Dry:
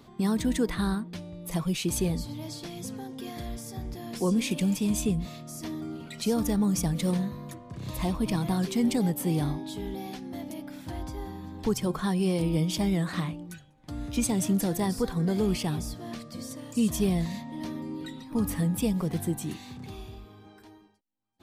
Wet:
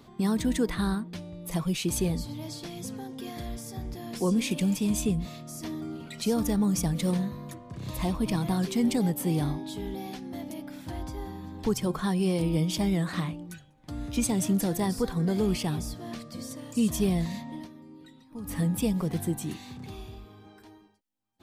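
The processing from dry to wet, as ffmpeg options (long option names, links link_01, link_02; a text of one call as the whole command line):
ffmpeg -i in.wav -filter_complex "[0:a]asplit=3[link_01][link_02][link_03];[link_01]atrim=end=17.68,asetpts=PTS-STARTPTS,afade=type=out:start_time=17.54:duration=0.14:silence=0.237137[link_04];[link_02]atrim=start=17.68:end=18.43,asetpts=PTS-STARTPTS,volume=-12.5dB[link_05];[link_03]atrim=start=18.43,asetpts=PTS-STARTPTS,afade=type=in:duration=0.14:silence=0.237137[link_06];[link_04][link_05][link_06]concat=n=3:v=0:a=1" out.wav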